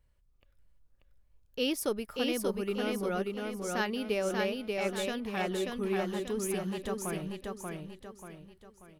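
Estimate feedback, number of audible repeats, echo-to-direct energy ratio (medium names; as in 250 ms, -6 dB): 41%, 5, -2.0 dB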